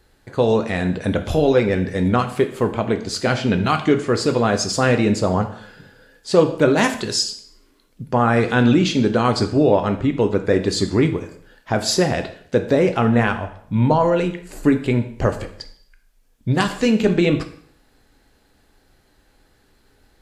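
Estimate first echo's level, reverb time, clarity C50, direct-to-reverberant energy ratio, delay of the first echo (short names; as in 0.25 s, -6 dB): none, 0.60 s, 11.5 dB, 6.5 dB, none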